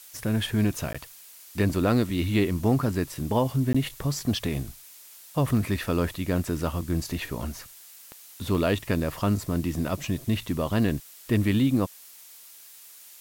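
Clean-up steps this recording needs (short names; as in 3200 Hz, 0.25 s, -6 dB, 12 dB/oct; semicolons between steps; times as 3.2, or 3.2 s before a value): de-click; interpolate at 0.93/3.73, 15 ms; noise print and reduce 22 dB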